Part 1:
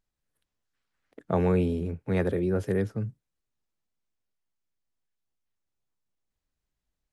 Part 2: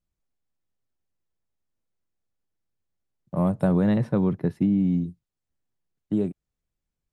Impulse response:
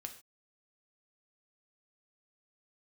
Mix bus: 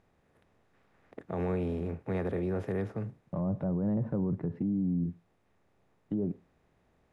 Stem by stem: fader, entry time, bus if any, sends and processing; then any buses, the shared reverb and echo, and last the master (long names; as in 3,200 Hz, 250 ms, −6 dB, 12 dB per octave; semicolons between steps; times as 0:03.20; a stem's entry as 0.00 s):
−7.0 dB, 0.00 s, no send, compressor on every frequency bin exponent 0.6; parametric band 760 Hz +2.5 dB 0.22 octaves
−0.5 dB, 0.00 s, send −9.5 dB, treble cut that deepens with the level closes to 880 Hz, closed at −20 dBFS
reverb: on, pre-delay 3 ms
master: high-shelf EQ 4,400 Hz −11 dB; brickwall limiter −24 dBFS, peak gain reduction 13 dB